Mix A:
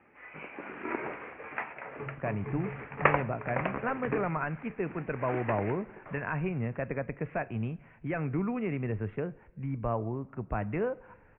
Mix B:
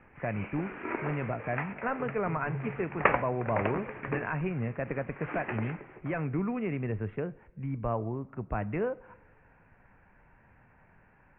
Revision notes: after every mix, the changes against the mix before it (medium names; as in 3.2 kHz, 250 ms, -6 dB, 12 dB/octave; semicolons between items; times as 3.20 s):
speech: entry -2.00 s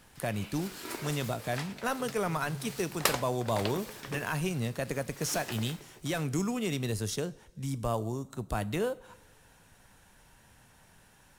background -6.5 dB; master: remove steep low-pass 2.5 kHz 72 dB/octave